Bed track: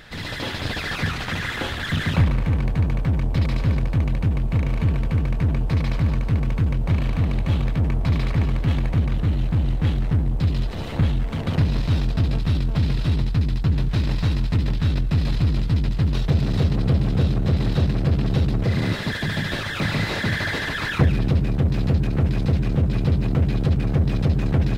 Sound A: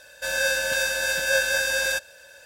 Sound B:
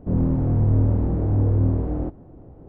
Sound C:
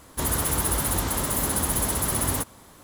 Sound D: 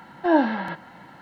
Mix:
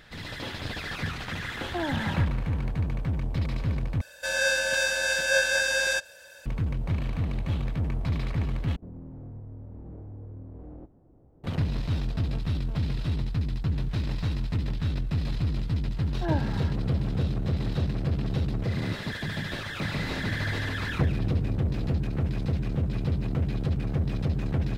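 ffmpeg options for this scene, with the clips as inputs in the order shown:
-filter_complex "[4:a]asplit=2[a][b];[2:a]asplit=2[c][d];[0:a]volume=-7.5dB[e];[a]alimiter=limit=-18dB:level=0:latency=1:release=71[f];[1:a]acrossover=split=9500[g][h];[h]acompressor=threshold=-53dB:ratio=4:attack=1:release=60[i];[g][i]amix=inputs=2:normalize=0[j];[c]acompressor=threshold=-25dB:ratio=6:attack=3.2:release=140:knee=1:detection=peak[k];[e]asplit=3[l][m][n];[l]atrim=end=4.014[o];[j]atrim=end=2.45,asetpts=PTS-STARTPTS,volume=-1dB[p];[m]atrim=start=6.456:end=8.764[q];[k]atrim=end=2.68,asetpts=PTS-STARTPTS,volume=-13.5dB[r];[n]atrim=start=11.436[s];[f]atrim=end=1.21,asetpts=PTS-STARTPTS,volume=-5.5dB,afade=t=in:d=0.004:c=hsin,afade=t=out:st=1.206:d=0.004:c=hsin,adelay=1500[t];[b]atrim=end=1.21,asetpts=PTS-STARTPTS,volume=-12dB,afade=t=in:d=0.004:c=hsin,afade=t=out:st=1.206:d=0.004:c=hsin,adelay=15970[u];[d]atrim=end=2.68,asetpts=PTS-STARTPTS,volume=-15dB,afade=t=in:d=0.004:c=hsin,afade=t=out:st=2.676:d=0.004:c=hsin,adelay=19890[v];[o][p]acrossfade=d=0.004:c1=hsin:c2=hsin[w];[w][q]acrossfade=d=0.004:c1=hsin:c2=hsin[x];[x][r]acrossfade=d=0.004:c1=hsin:c2=hsin[y];[y][s]acrossfade=d=0.004:c1=hsin:c2=hsin[z];[z][t][u][v]amix=inputs=4:normalize=0"

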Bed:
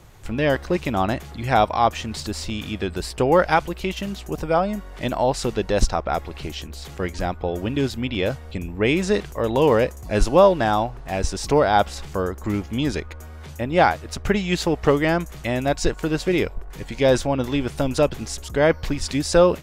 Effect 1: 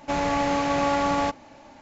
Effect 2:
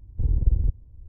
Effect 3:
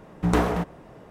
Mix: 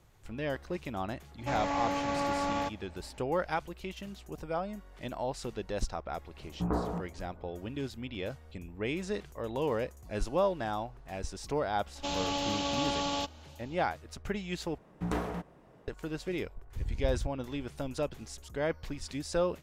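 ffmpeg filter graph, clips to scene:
-filter_complex "[1:a]asplit=2[a][b];[3:a]asplit=2[c][d];[0:a]volume=-14.5dB[e];[c]lowpass=f=1.3k:w=0.5412,lowpass=f=1.3k:w=1.3066[f];[b]highshelf=f=2.5k:t=q:w=3:g=7.5[g];[e]asplit=2[h][i];[h]atrim=end=14.784[j];[d]atrim=end=1.1,asetpts=PTS-STARTPTS,volume=-11.5dB[k];[i]atrim=start=15.876[l];[a]atrim=end=1.81,asetpts=PTS-STARTPTS,volume=-8.5dB,afade=t=in:d=0.004:c=hsin,afade=t=out:st=1.806:d=0.004:c=hsin,adelay=1380[m];[f]atrim=end=1.1,asetpts=PTS-STARTPTS,volume=-9.5dB,afade=t=in:d=0.004:c=hsin,afade=t=out:st=1.096:d=0.004:c=hsin,adelay=6370[n];[g]atrim=end=1.81,asetpts=PTS-STARTPTS,volume=-9.5dB,afade=t=in:d=0.004:c=hsin,afade=t=out:st=1.806:d=0.004:c=hsin,adelay=11950[o];[2:a]atrim=end=1.08,asetpts=PTS-STARTPTS,volume=-12.5dB,afade=t=in:d=0.004:c=hsin,afade=t=out:st=1.076:d=0.004:c=hsin,adelay=16570[p];[j][k]acrossfade=d=0.004:c1=hsin:c2=hsin[q];[q][l]acrossfade=d=0.004:c1=hsin:c2=hsin[r];[r][m][n][o][p]amix=inputs=5:normalize=0"

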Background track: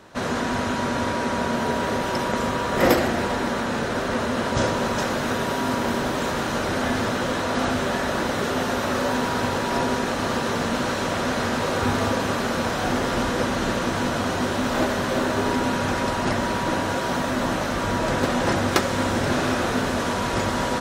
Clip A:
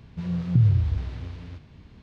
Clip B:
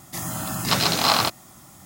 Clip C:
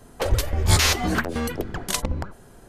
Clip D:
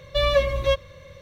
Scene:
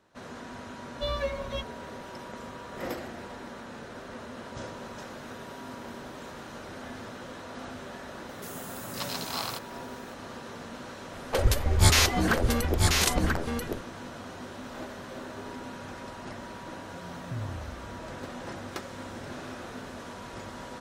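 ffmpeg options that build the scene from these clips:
-filter_complex "[0:a]volume=-17.5dB[a];[4:a]asplit=2[b][c];[c]adelay=8.6,afreqshift=1.8[d];[b][d]amix=inputs=2:normalize=1[e];[2:a]crystalizer=i=0.5:c=0[f];[3:a]aecho=1:1:987:0.631[g];[1:a]equalizer=f=160:w=0.49:g=-6[h];[e]atrim=end=1.21,asetpts=PTS-STARTPTS,volume=-8dB,afade=t=in:d=0.004:c=hsin,afade=t=out:st=1.206:d=0.004:c=hsin,adelay=860[i];[f]atrim=end=1.85,asetpts=PTS-STARTPTS,volume=-15.5dB,afade=t=in:d=0.004:c=hsin,afade=t=out:st=1.846:d=0.004:c=hsin,adelay=8290[j];[g]atrim=end=2.68,asetpts=PTS-STARTPTS,volume=-2dB,afade=t=in:d=0.004:c=hsin,afade=t=out:st=2.676:d=0.004:c=hsin,adelay=11130[k];[h]atrim=end=2.02,asetpts=PTS-STARTPTS,volume=-12.5dB,afade=t=in:d=0.004:c=hsin,afade=t=out:st=2.016:d=0.004:c=hsin,adelay=16760[l];[a][i][j][k][l]amix=inputs=5:normalize=0"

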